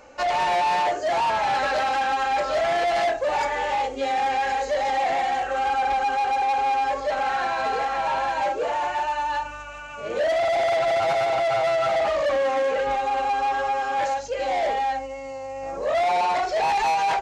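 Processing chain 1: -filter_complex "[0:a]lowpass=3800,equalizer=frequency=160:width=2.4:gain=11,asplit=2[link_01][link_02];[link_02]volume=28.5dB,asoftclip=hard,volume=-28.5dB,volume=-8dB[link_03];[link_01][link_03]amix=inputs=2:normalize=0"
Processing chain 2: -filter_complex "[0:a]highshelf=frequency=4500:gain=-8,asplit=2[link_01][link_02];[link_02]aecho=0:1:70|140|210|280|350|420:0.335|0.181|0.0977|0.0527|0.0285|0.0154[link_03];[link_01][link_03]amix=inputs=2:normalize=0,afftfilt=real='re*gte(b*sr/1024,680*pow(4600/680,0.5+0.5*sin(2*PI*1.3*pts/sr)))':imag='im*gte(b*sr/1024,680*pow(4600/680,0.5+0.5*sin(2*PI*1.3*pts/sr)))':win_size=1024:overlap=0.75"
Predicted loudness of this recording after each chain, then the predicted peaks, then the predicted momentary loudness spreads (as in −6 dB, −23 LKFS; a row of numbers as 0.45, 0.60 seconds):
−22.0, −30.0 LKFS; −15.0, −13.5 dBFS; 4, 16 LU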